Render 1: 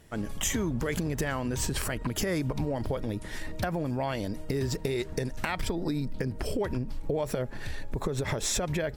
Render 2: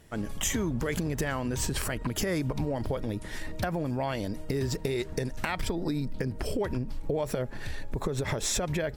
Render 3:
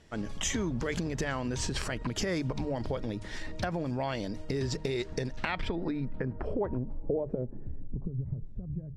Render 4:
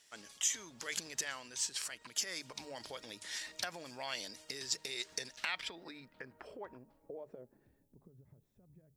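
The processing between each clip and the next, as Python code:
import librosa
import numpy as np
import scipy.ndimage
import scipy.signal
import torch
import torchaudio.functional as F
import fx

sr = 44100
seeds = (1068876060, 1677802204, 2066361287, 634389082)

y1 = x
y2 = fx.hum_notches(y1, sr, base_hz=50, count=3)
y2 = fx.filter_sweep_lowpass(y2, sr, from_hz=5700.0, to_hz=140.0, start_s=5.12, end_s=8.27, q=1.2)
y2 = y2 * 10.0 ** (-2.0 / 20.0)
y3 = np.diff(y2, prepend=0.0)
y3 = fx.rider(y3, sr, range_db=4, speed_s=0.5)
y3 = y3 * 10.0 ** (5.0 / 20.0)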